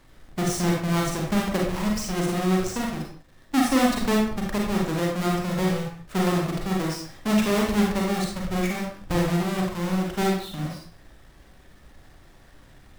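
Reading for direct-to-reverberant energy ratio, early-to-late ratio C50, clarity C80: -2.0 dB, 2.5 dB, 6.5 dB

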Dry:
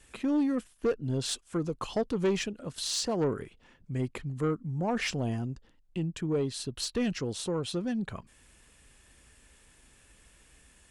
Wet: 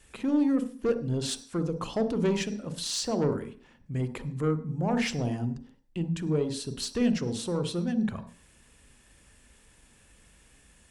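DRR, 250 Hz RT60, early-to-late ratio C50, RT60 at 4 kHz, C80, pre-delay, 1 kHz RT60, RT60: 9.5 dB, 0.55 s, 12.0 dB, no reading, 16.0 dB, 40 ms, 0.45 s, 0.45 s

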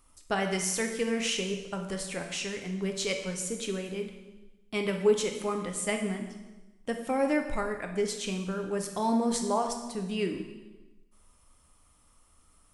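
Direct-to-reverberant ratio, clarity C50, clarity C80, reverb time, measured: 3.5 dB, 6.5 dB, 8.5 dB, 1.1 s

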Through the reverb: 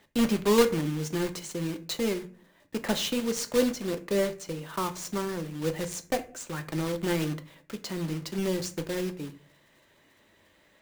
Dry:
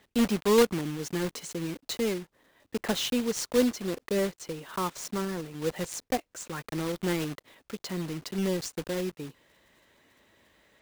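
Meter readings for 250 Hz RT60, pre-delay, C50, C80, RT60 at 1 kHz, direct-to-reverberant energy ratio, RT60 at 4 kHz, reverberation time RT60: 0.65 s, 3 ms, 15.5 dB, 20.0 dB, 0.40 s, 7.5 dB, 0.30 s, 0.40 s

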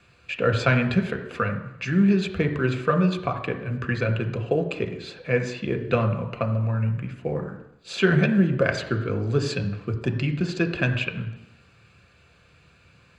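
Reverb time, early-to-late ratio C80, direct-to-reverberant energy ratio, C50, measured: 0.85 s, 12.0 dB, 5.0 dB, 10.0 dB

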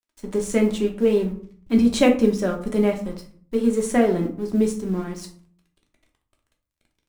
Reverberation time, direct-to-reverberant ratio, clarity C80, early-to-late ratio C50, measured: 0.50 s, 1.5 dB, 14.5 dB, 9.5 dB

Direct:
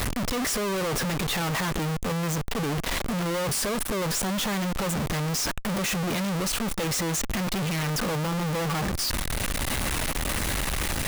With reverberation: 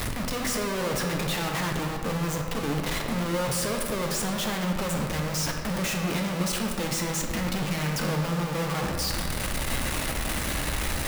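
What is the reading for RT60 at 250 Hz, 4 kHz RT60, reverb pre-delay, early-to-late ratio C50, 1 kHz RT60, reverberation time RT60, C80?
2.4 s, 1.3 s, 5 ms, 3.5 dB, 2.3 s, 2.3 s, 5.0 dB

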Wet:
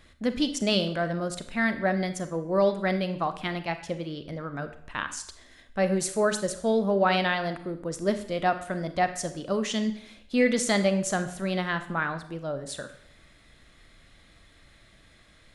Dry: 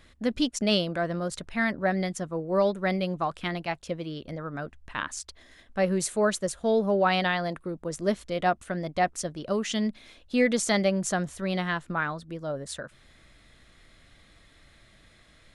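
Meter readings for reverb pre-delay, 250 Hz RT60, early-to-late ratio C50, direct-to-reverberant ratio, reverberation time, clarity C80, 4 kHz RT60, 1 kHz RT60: 30 ms, 0.65 s, 11.0 dB, 9.0 dB, 0.65 s, 14.0 dB, 0.60 s, 0.65 s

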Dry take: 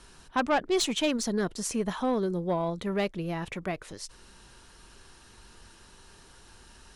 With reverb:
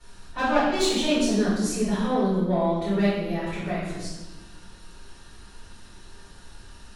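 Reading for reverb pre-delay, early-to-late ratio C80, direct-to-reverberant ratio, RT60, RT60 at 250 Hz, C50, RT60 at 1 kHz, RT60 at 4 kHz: 3 ms, 2.5 dB, -13.0 dB, 1.2 s, 1.8 s, -0.5 dB, 1.1 s, 1.0 s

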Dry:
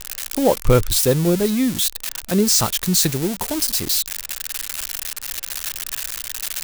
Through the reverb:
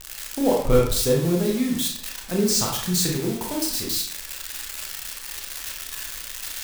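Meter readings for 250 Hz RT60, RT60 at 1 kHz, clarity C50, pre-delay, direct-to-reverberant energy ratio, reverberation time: 0.65 s, 0.60 s, 3.5 dB, 26 ms, -1.5 dB, 0.60 s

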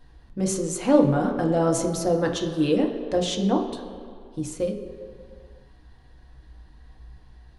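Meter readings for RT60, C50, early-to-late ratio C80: 2.2 s, 6.5 dB, 8.0 dB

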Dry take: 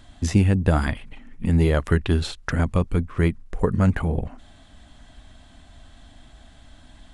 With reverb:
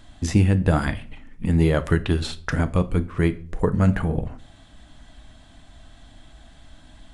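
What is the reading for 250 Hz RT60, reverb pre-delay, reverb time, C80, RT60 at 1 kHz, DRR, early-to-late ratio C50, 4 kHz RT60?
0.55 s, 6 ms, 0.45 s, 22.5 dB, 0.40 s, 11.0 dB, 18.5 dB, 0.35 s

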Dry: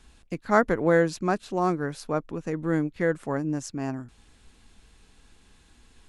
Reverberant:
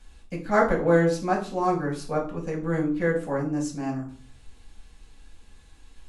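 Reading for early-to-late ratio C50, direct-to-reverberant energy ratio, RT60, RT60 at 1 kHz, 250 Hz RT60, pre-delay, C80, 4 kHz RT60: 9.0 dB, -2.0 dB, 0.45 s, 0.45 s, 0.55 s, 4 ms, 14.0 dB, 0.35 s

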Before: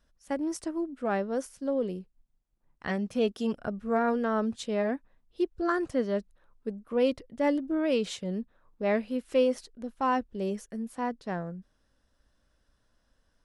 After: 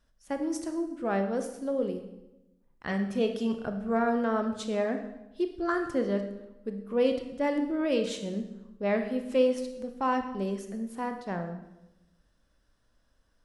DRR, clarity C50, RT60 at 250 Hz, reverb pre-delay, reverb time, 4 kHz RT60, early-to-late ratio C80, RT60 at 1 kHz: 6.0 dB, 8.5 dB, 1.2 s, 24 ms, 0.95 s, 0.80 s, 10.5 dB, 0.90 s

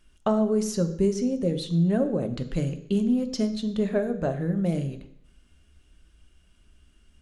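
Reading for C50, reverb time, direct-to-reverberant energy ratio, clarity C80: 12.5 dB, 0.70 s, 8.0 dB, 14.5 dB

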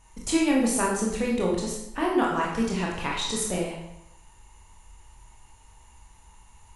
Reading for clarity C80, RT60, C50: 5.5 dB, 0.85 s, 2.0 dB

